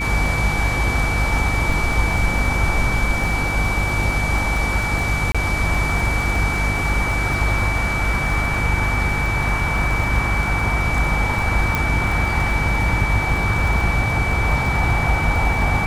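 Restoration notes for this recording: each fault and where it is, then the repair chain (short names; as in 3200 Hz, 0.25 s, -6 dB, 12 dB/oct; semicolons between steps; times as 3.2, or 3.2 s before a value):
crackle 50/s -26 dBFS
hum 50 Hz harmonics 7 -24 dBFS
tone 2300 Hz -23 dBFS
5.32–5.35 gap 26 ms
11.75 pop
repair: de-click; de-hum 50 Hz, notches 7; notch 2300 Hz, Q 30; interpolate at 5.32, 26 ms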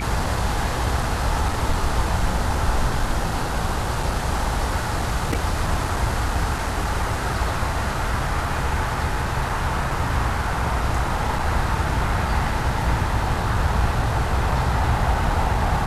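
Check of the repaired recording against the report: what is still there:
none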